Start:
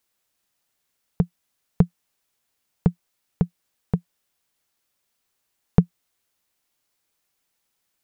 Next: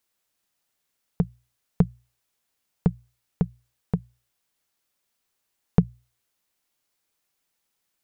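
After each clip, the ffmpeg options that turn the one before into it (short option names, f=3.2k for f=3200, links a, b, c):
-af "bandreject=f=60:t=h:w=6,bandreject=f=120:t=h:w=6,volume=-2dB"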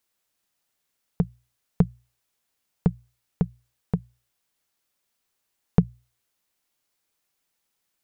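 -af anull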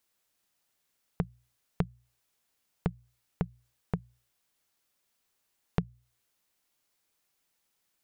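-af "acompressor=threshold=-31dB:ratio=2.5"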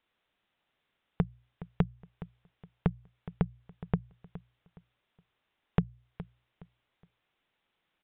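-filter_complex "[0:a]asplit=2[a][b];[b]asoftclip=type=hard:threshold=-21dB,volume=-5.5dB[c];[a][c]amix=inputs=2:normalize=0,aecho=1:1:417|834|1251:0.168|0.0487|0.0141,aresample=8000,aresample=44100"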